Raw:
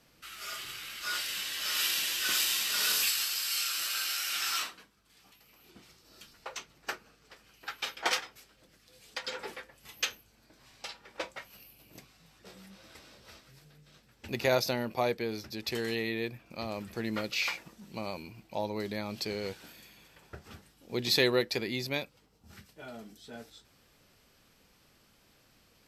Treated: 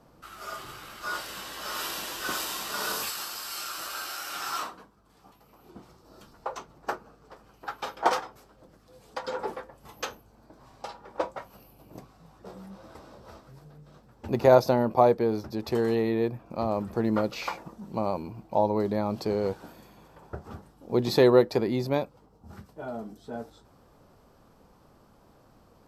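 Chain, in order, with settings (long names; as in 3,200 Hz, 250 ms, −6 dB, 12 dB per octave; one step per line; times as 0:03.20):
high shelf with overshoot 1,500 Hz −13 dB, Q 1.5
level +8.5 dB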